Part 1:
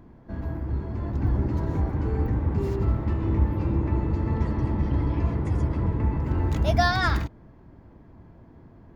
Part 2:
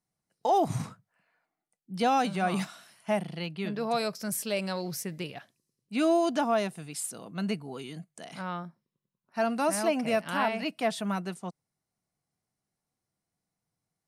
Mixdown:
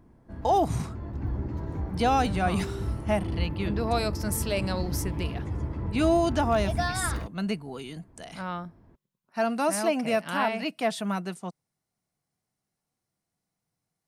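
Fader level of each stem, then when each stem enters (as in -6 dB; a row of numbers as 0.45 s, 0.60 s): -7.0 dB, +1.5 dB; 0.00 s, 0.00 s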